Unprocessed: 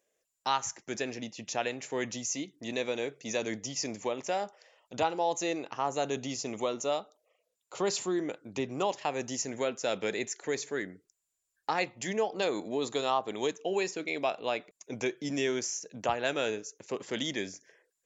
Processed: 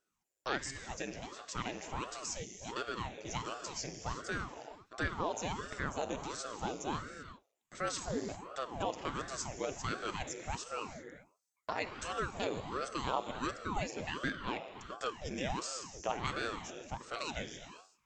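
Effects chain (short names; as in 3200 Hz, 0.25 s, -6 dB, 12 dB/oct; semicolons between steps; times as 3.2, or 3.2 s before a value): notch 3900 Hz, Q 17; non-linear reverb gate 0.41 s flat, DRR 7 dB; ring modulator with a swept carrier 500 Hz, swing 90%, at 1.4 Hz; gain -4 dB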